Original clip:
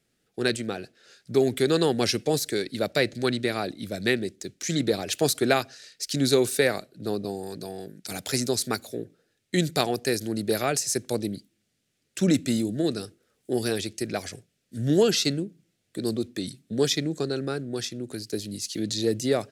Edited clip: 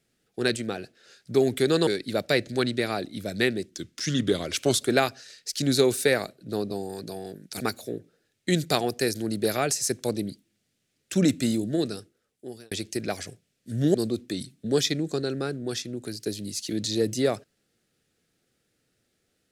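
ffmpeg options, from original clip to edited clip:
ffmpeg -i in.wav -filter_complex "[0:a]asplit=7[link_01][link_02][link_03][link_04][link_05][link_06][link_07];[link_01]atrim=end=1.872[link_08];[link_02]atrim=start=2.528:end=4.374[link_09];[link_03]atrim=start=4.37:end=5.37,asetpts=PTS-STARTPTS,asetrate=39249,aresample=44100[link_10];[link_04]atrim=start=5.366:end=8.142[link_11];[link_05]atrim=start=8.658:end=13.77,asetpts=PTS-STARTPTS,afade=type=out:start_time=4.152:duration=0.96[link_12];[link_06]atrim=start=13.77:end=15.002,asetpts=PTS-STARTPTS,afade=type=in:duration=0.004:curve=hsin[link_13];[link_07]atrim=start=16.008[link_14];[link_08][link_09]acrossfade=duration=0.004:curve1=hsin:curve2=hsin[link_15];[link_15][link_10]acrossfade=duration=0.004:curve1=hsin:curve2=hsin[link_16];[link_16][link_11]acrossfade=duration=0.004:curve1=hsin:curve2=hsin[link_17];[link_12][link_13]concat=n=2:v=0:a=1[link_18];[link_17][link_18]acrossfade=duration=0.004:curve1=hsin:curve2=hsin[link_19];[link_19][link_14]acrossfade=duration=0.004:curve1=hsin:curve2=hsin" out.wav

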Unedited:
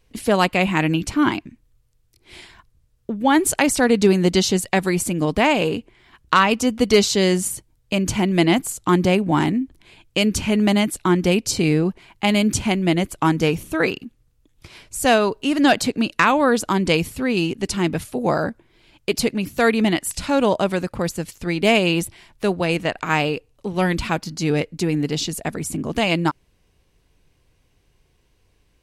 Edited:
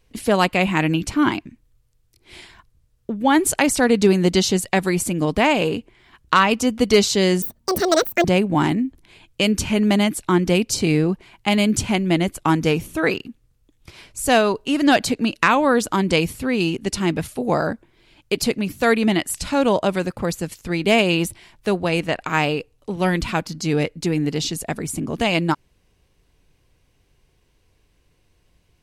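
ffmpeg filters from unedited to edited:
ffmpeg -i in.wav -filter_complex "[0:a]asplit=3[link_01][link_02][link_03];[link_01]atrim=end=7.424[link_04];[link_02]atrim=start=7.42:end=9.01,asetpts=PTS-STARTPTS,asetrate=85113,aresample=44100,atrim=end_sample=36331,asetpts=PTS-STARTPTS[link_05];[link_03]atrim=start=9.006[link_06];[link_04][link_05]acrossfade=duration=0.004:curve1=hsin:curve2=hsin[link_07];[link_07][link_06]acrossfade=duration=0.004:curve1=hsin:curve2=hsin" out.wav

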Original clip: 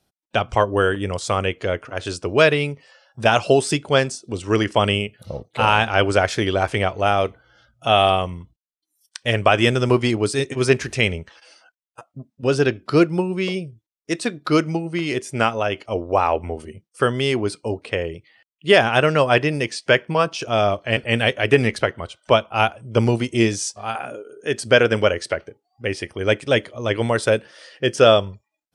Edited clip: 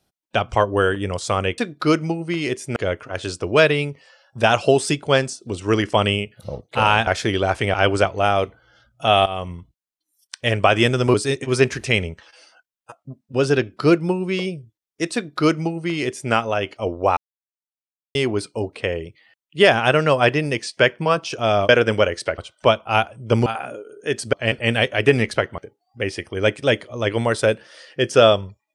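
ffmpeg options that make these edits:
ffmpeg -i in.wav -filter_complex "[0:a]asplit=15[link_01][link_02][link_03][link_04][link_05][link_06][link_07][link_08][link_09][link_10][link_11][link_12][link_13][link_14][link_15];[link_01]atrim=end=1.582[link_16];[link_02]atrim=start=14.228:end=15.412[link_17];[link_03]atrim=start=1.578:end=5.892[link_18];[link_04]atrim=start=6.198:end=6.872[link_19];[link_05]atrim=start=5.888:end=6.202[link_20];[link_06]atrim=start=6.868:end=8.08,asetpts=PTS-STARTPTS,afade=type=out:start_time=1.208:duration=0.004:curve=hsin:silence=0.158489[link_21];[link_07]atrim=start=8.08:end=9.962,asetpts=PTS-STARTPTS,afade=type=in:duration=0.26:silence=0.158489[link_22];[link_08]atrim=start=10.228:end=16.26,asetpts=PTS-STARTPTS,afade=type=out:start_time=6.028:duration=0.004:curve=hsin[link_23];[link_09]atrim=start=16.26:end=17.24,asetpts=PTS-STARTPTS,volume=0[link_24];[link_10]atrim=start=17.24:end=20.782,asetpts=PTS-STARTPTS,afade=type=in:duration=0.004:curve=hsin[link_25];[link_11]atrim=start=24.728:end=25.422[link_26];[link_12]atrim=start=22.028:end=23.112[link_27];[link_13]atrim=start=23.858:end=24.732[link_28];[link_14]atrim=start=20.778:end=22.032[link_29];[link_15]atrim=start=25.418[link_30];[link_16][link_17]acrossfade=duration=0.004:curve1=hsin:curve2=hsin[link_31];[link_31][link_18]acrossfade=duration=0.004:curve1=hsin:curve2=hsin[link_32];[link_32][link_19]acrossfade=duration=0.004:curve1=hsin:curve2=hsin[link_33];[link_33][link_20]acrossfade=duration=0.004:curve1=hsin:curve2=hsin[link_34];[link_21][link_22]concat=n=2:v=0:a=1[link_35];[link_34][link_35]acrossfade=duration=0.004:curve1=hsin:curve2=hsin[link_36];[link_23][link_24][link_25]concat=n=3:v=0:a=1[link_37];[link_36][link_37]acrossfade=duration=0.004:curve1=hsin:curve2=hsin[link_38];[link_38][link_26]acrossfade=duration=0.004:curve1=hsin:curve2=hsin[link_39];[link_39][link_27]acrossfade=duration=0.004:curve1=hsin:curve2=hsin[link_40];[link_40][link_28]acrossfade=duration=0.004:curve1=hsin:curve2=hsin[link_41];[link_41][link_29]acrossfade=duration=0.004:curve1=hsin:curve2=hsin[link_42];[link_42][link_30]acrossfade=duration=0.004:curve1=hsin:curve2=hsin" out.wav

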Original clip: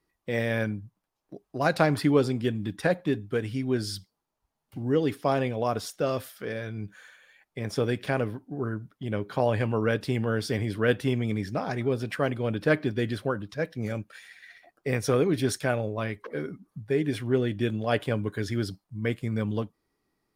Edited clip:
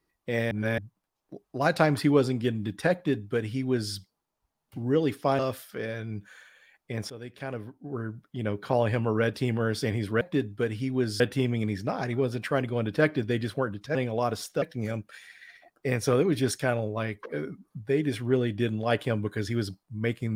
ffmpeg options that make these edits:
ffmpeg -i in.wav -filter_complex "[0:a]asplit=9[link_01][link_02][link_03][link_04][link_05][link_06][link_07][link_08][link_09];[link_01]atrim=end=0.512[link_10];[link_02]atrim=start=0.508:end=0.782,asetpts=PTS-STARTPTS,areverse[link_11];[link_03]atrim=start=0.778:end=5.392[link_12];[link_04]atrim=start=6.058:end=7.77,asetpts=PTS-STARTPTS,afade=type=out:start_time=1.708:duration=0.004:curve=hsin:silence=0.11885[link_13];[link_05]atrim=start=7.77:end=10.882,asetpts=PTS-STARTPTS,afade=type=in:duration=1.3:silence=0.11885[link_14];[link_06]atrim=start=2.938:end=3.932[link_15];[link_07]atrim=start=10.878:end=13.632[link_16];[link_08]atrim=start=5.388:end=6.062[link_17];[link_09]atrim=start=13.628[link_18];[link_10][link_11]acrossfade=duration=0.004:curve1=hsin:curve2=hsin[link_19];[link_19][link_12]acrossfade=duration=0.004:curve1=hsin:curve2=hsin[link_20];[link_13][link_14]concat=n=2:v=0:a=1[link_21];[link_20][link_21]acrossfade=duration=0.004:curve1=hsin:curve2=hsin[link_22];[link_22][link_15]acrossfade=duration=0.004:curve1=hsin:curve2=hsin[link_23];[link_23][link_16]acrossfade=duration=0.004:curve1=hsin:curve2=hsin[link_24];[link_24][link_17]acrossfade=duration=0.004:curve1=hsin:curve2=hsin[link_25];[link_25][link_18]acrossfade=duration=0.004:curve1=hsin:curve2=hsin" out.wav

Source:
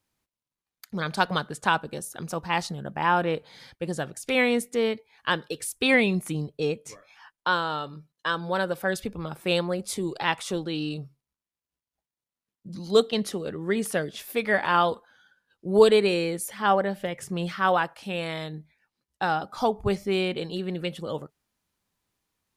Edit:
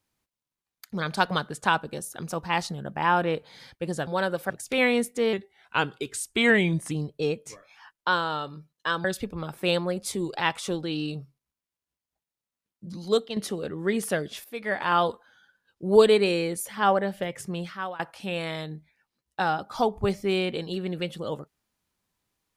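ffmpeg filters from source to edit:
ffmpeg -i in.wav -filter_complex "[0:a]asplit=9[link_01][link_02][link_03][link_04][link_05][link_06][link_07][link_08][link_09];[link_01]atrim=end=4.072[link_10];[link_02]atrim=start=8.438:end=8.872[link_11];[link_03]atrim=start=4.068:end=4.904[link_12];[link_04]atrim=start=4.9:end=6.31,asetpts=PTS-STARTPTS,asetrate=39249,aresample=44100,atrim=end_sample=69866,asetpts=PTS-STARTPTS[link_13];[link_05]atrim=start=6.306:end=8.442[link_14];[link_06]atrim=start=8.868:end=13.19,asetpts=PTS-STARTPTS,afade=type=out:start_time=3.862:duration=0.46:silence=0.354813[link_15];[link_07]atrim=start=13.19:end=14.27,asetpts=PTS-STARTPTS,afade=type=in:duration=0.004:curve=hsin:silence=0.354813,afade=type=out:start_time=1.076:duration=0.004:curve=hsin:silence=0.211349[link_16];[link_08]atrim=start=14.27:end=17.82,asetpts=PTS-STARTPTS,afade=type=in:duration=0.6:silence=0.211349,afade=type=out:start_time=2.94:duration=0.61:silence=0.0749894[link_17];[link_09]atrim=start=17.82,asetpts=PTS-STARTPTS,afade=type=in:duration=0.004:curve=hsin:silence=0.0749894[link_18];[link_10][link_11]acrossfade=duration=0.004:curve1=hsin:curve2=hsin[link_19];[link_19][link_12]acrossfade=duration=0.004:curve1=hsin:curve2=hsin[link_20];[link_20][link_13]acrossfade=duration=0.004:curve1=hsin:curve2=hsin[link_21];[link_21][link_14]acrossfade=duration=0.004:curve1=hsin:curve2=hsin[link_22];[link_15][link_16][link_17][link_18]concat=n=4:v=0:a=1[link_23];[link_22][link_23]acrossfade=duration=0.004:curve1=hsin:curve2=hsin" out.wav

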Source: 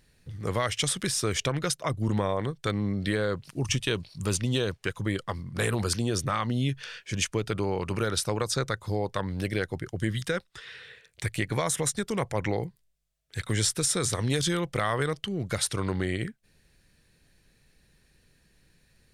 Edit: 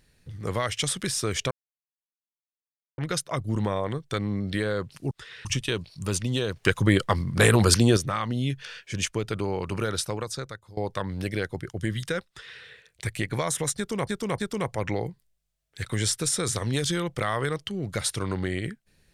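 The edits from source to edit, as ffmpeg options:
ffmpeg -i in.wav -filter_complex "[0:a]asplit=9[link_01][link_02][link_03][link_04][link_05][link_06][link_07][link_08][link_09];[link_01]atrim=end=1.51,asetpts=PTS-STARTPTS,afade=type=out:start_time=1.506:duration=0.004:curve=hsin,apad=pad_dur=1.47[link_10];[link_02]atrim=start=1.51:end=3.642,asetpts=PTS-STARTPTS,afade=type=in:duration=0.004:curve=hsin[link_11];[link_03]atrim=start=10.468:end=10.812[link_12];[link_04]atrim=start=3.638:end=4.752[link_13];[link_05]atrim=start=4.748:end=6.162,asetpts=PTS-STARTPTS,volume=9dB[link_14];[link_06]atrim=start=6.158:end=8.96,asetpts=PTS-STARTPTS,afade=type=out:start_time=1.952:duration=0.85:silence=0.0891251[link_15];[link_07]atrim=start=8.96:end=12.262,asetpts=PTS-STARTPTS,afade=type=in:duration=0.004:curve=hsin:silence=0.0891251[link_16];[link_08]atrim=start=11.948:end=12.262[link_17];[link_09]atrim=start=11.948[link_18];[link_10][link_11]concat=n=2:v=0:a=1[link_19];[link_19][link_12]acrossfade=duration=0.004:curve1=hsin:curve2=hsin[link_20];[link_20][link_13]acrossfade=duration=0.004:curve1=hsin:curve2=hsin[link_21];[link_21][link_14]acrossfade=duration=0.004:curve1=hsin:curve2=hsin[link_22];[link_15][link_16]concat=n=2:v=0:a=1[link_23];[link_22][link_23]acrossfade=duration=0.004:curve1=hsin:curve2=hsin[link_24];[link_24][link_17]acrossfade=duration=0.004:curve1=hsin:curve2=hsin[link_25];[link_25][link_18]acrossfade=duration=0.004:curve1=hsin:curve2=hsin" out.wav

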